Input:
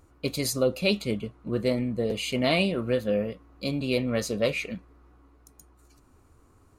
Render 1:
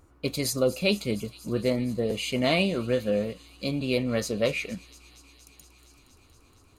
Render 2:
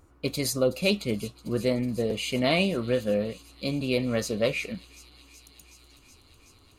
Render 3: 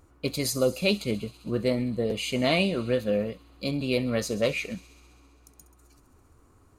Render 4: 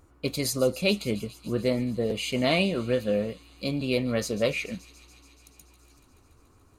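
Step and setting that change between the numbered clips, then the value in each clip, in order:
delay with a high-pass on its return, delay time: 234, 373, 66, 143 milliseconds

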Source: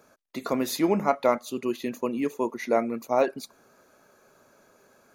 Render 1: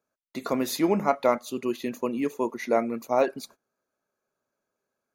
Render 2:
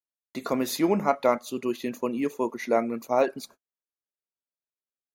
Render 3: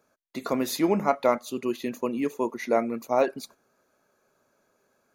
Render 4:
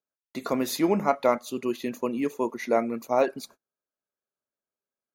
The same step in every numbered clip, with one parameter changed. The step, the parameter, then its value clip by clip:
noise gate, range: −24, −50, −10, −38 decibels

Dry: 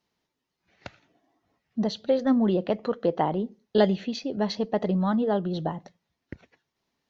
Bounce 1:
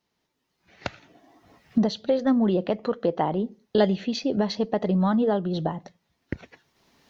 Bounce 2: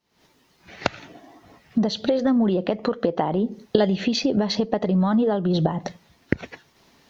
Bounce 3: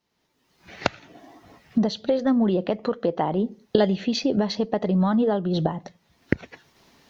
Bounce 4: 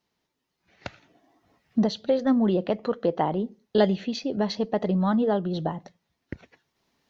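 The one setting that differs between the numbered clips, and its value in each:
camcorder AGC, rising by: 13, 89, 34, 5.1 dB per second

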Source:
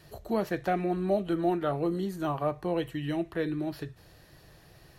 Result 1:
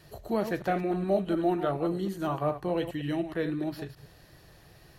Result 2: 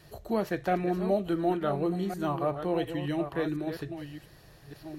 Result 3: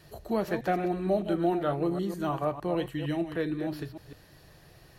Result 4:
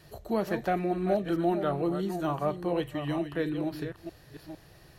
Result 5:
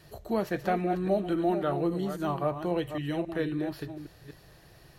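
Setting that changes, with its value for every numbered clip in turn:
delay that plays each chunk backwards, delay time: 104, 713, 153, 455, 271 milliseconds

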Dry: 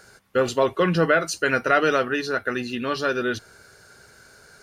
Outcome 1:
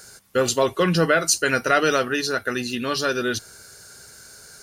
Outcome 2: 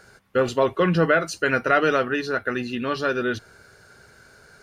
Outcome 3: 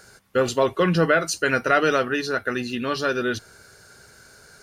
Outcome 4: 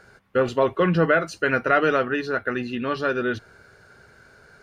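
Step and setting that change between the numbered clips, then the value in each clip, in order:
bass and treble, treble: +13, −5, +3, −13 decibels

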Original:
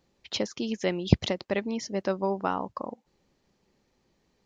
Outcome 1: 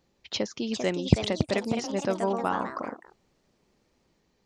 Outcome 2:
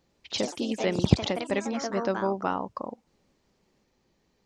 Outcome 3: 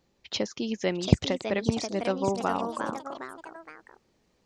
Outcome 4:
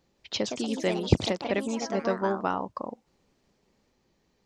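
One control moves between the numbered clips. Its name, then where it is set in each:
delay with pitch and tempo change per echo, delay time: 459, 95, 741, 177 milliseconds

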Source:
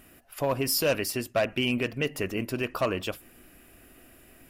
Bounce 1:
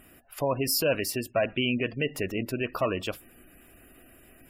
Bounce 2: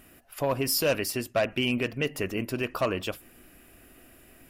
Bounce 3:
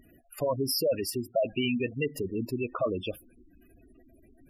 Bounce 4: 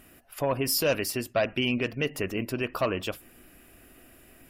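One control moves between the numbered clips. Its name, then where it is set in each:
gate on every frequency bin, under each frame's peak: −25, −55, −10, −40 decibels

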